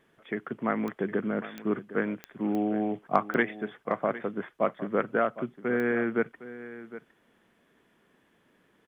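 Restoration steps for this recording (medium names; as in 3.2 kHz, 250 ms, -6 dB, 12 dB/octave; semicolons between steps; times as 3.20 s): de-click; inverse comb 759 ms -15 dB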